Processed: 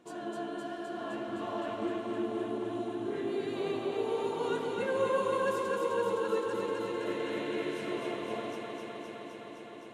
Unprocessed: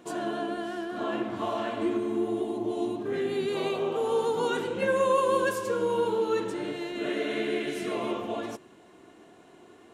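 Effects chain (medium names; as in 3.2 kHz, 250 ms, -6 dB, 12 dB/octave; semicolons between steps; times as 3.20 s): treble shelf 10 kHz -6.5 dB; on a send: echo whose repeats swap between lows and highs 129 ms, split 910 Hz, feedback 90%, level -2.5 dB; on the sum: trim -8.5 dB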